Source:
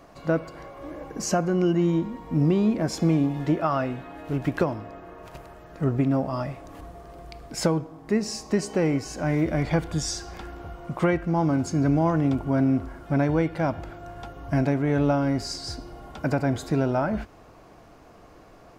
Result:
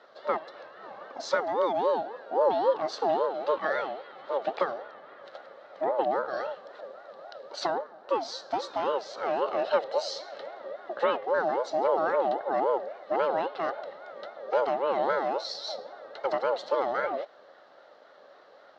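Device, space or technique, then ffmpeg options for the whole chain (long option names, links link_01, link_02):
voice changer toy: -af "aeval=exprs='val(0)*sin(2*PI*610*n/s+610*0.25/3.7*sin(2*PI*3.7*n/s))':channel_layout=same,highpass=530,equalizer=frequency=560:width_type=q:width=4:gain=10,equalizer=frequency=990:width_type=q:width=4:gain=-7,equalizer=frequency=2400:width_type=q:width=4:gain=-9,equalizer=frequency=4000:width_type=q:width=4:gain=8,lowpass=frequency=4700:width=0.5412,lowpass=frequency=4700:width=1.3066"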